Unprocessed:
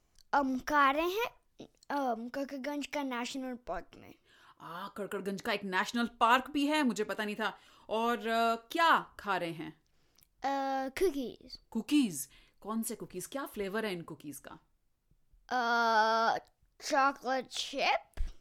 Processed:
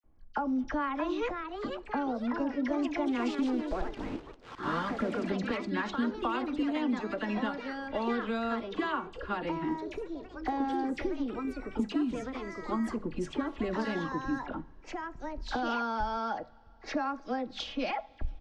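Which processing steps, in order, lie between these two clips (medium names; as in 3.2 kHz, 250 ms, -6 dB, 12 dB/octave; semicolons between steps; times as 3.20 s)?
recorder AGC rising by 7.2 dB/s; band-stop 540 Hz, Q 15; level-controlled noise filter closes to 1.3 kHz, open at -26 dBFS; bass shelf 460 Hz +9.5 dB; hum notches 50/100/150/200 Hz; comb 3.6 ms, depth 44%; compression, threshold -29 dBFS, peak gain reduction 15.5 dB; phase dispersion lows, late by 42 ms, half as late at 1.7 kHz; 3.08–5.27 s: small samples zeroed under -41 dBFS; ever faster or slower copies 685 ms, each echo +3 st, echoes 3, each echo -6 dB; distance through air 120 m; two-slope reverb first 0.3 s, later 3.9 s, from -18 dB, DRR 18 dB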